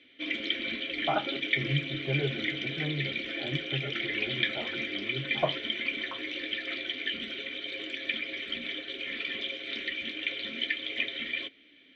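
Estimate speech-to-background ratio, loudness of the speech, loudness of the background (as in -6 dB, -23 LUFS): -4.5 dB, -36.5 LUFS, -32.0 LUFS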